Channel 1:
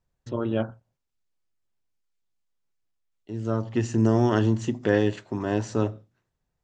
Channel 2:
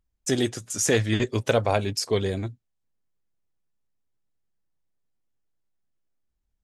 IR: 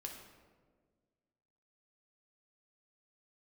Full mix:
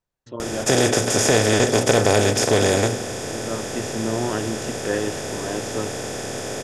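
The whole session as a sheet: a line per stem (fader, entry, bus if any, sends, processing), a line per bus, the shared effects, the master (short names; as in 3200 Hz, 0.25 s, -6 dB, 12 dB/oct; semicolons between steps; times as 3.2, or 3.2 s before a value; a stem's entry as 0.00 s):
-1.0 dB, 0.00 s, no send, low shelf 190 Hz -11 dB
-3.5 dB, 0.40 s, send -5 dB, per-bin compression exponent 0.2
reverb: on, RT60 1.6 s, pre-delay 6 ms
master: dry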